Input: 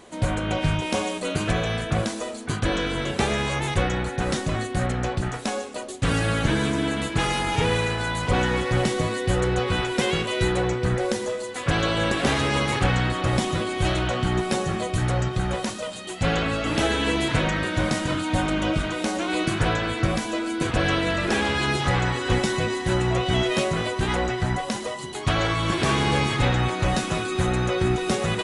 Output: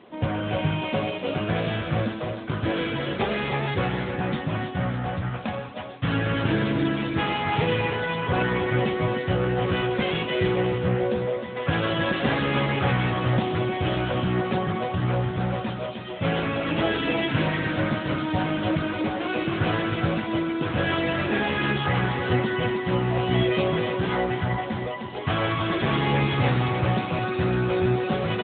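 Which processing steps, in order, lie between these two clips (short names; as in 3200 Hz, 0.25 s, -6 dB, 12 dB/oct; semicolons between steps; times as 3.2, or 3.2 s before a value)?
3.87–6.09 bell 390 Hz -4.5 dB -> -15 dB 0.48 oct; feedback echo 0.31 s, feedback 31%, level -7.5 dB; AMR-NB 10.2 kbps 8000 Hz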